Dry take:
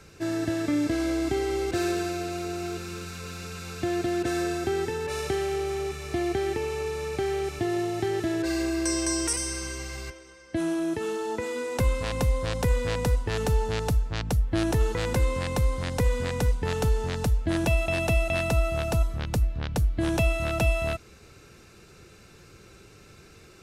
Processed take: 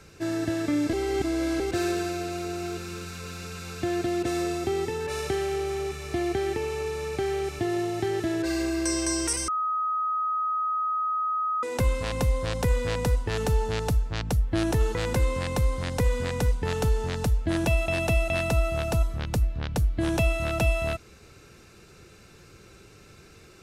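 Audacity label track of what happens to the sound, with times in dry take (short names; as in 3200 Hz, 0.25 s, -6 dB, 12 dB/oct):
0.930000	1.600000	reverse
4.070000	5.000000	notch 1600 Hz, Q 6.8
9.480000	11.630000	bleep 1260 Hz -24 dBFS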